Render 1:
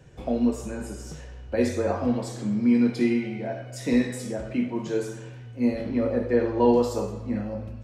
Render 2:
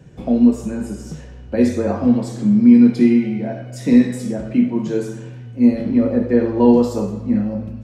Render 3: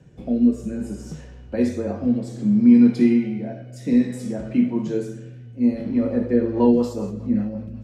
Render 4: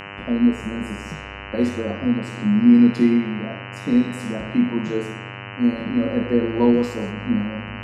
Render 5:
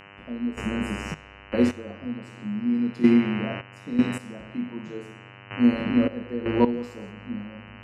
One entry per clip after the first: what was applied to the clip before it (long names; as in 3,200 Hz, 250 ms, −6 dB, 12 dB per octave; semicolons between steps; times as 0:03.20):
parametric band 200 Hz +10.5 dB 1.4 octaves; level +2 dB
rotating-speaker cabinet horn 0.6 Hz, later 5.5 Hz, at 0:06.05; level −3 dB
hum with harmonics 100 Hz, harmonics 30, −36 dBFS 0 dB per octave
gate pattern "...xxx..x...." 79 BPM −12 dB